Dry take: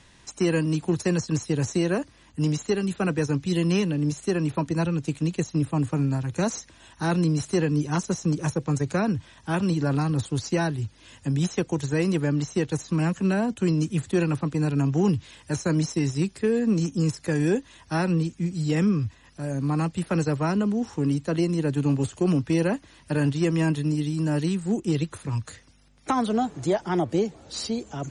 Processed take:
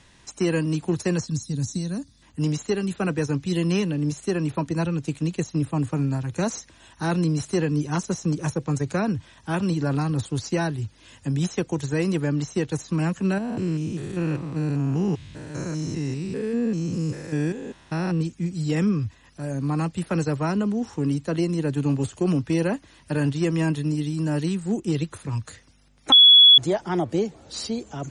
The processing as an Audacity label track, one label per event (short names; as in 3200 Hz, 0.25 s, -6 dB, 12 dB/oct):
1.280000	2.220000	spectral gain 280–3400 Hz -14 dB
13.380000	18.210000	stepped spectrum every 0.2 s
26.120000	26.580000	bleep 3380 Hz -8 dBFS